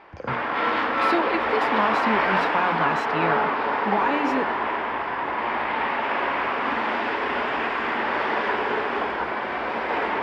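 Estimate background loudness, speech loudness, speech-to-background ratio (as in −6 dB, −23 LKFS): −24.0 LKFS, −28.5 LKFS, −4.5 dB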